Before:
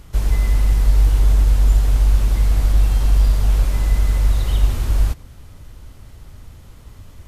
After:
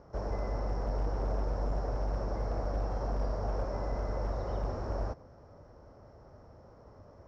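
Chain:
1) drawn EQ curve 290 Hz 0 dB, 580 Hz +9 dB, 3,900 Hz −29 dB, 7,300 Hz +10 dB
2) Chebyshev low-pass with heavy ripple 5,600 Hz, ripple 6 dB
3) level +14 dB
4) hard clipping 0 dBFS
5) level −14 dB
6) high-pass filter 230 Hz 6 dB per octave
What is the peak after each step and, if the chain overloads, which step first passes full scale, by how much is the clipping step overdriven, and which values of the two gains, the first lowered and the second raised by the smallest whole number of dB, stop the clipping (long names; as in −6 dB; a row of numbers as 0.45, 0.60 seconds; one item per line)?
−4.0, −10.5, +3.5, 0.0, −14.0, −21.5 dBFS
step 3, 3.5 dB
step 3 +10 dB, step 5 −10 dB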